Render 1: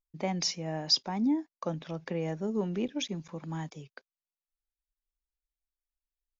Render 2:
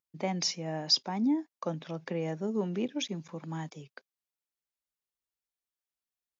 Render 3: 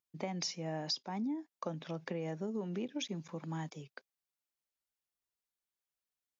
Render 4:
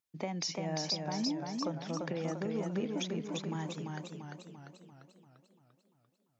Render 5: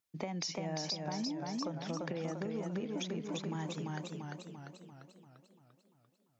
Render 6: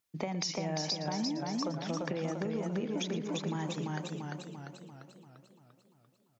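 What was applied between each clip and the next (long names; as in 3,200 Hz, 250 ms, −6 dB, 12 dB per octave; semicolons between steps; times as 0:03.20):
high-pass filter 120 Hz
downward compressor 6 to 1, threshold −33 dBFS, peak gain reduction 12.5 dB; level −1.5 dB
feedback echo with a swinging delay time 345 ms, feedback 54%, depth 83 cents, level −3.5 dB; level +1.5 dB
downward compressor 4 to 1, threshold −37 dBFS, peak gain reduction 7 dB; level +2 dB
single-tap delay 115 ms −13.5 dB; level +3.5 dB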